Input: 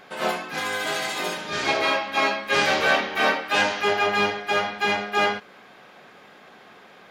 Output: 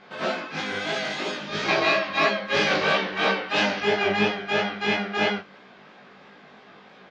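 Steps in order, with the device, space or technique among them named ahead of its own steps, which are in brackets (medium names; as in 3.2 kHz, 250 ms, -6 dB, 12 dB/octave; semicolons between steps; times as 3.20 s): low-pass 5.8 kHz 24 dB/octave; 1.68–2.27 s: comb 6.6 ms, depth 93%; double-tracked vocal (doubling 20 ms -3 dB; chorus 3 Hz, delay 15 ms, depth 6.1 ms); peaking EQ 190 Hz +4.5 dB 1 oct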